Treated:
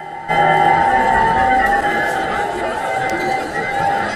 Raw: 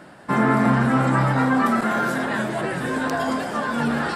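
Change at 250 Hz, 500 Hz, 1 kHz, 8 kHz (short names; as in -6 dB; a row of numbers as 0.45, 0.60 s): -5.5, +5.0, +10.0, +3.5 dB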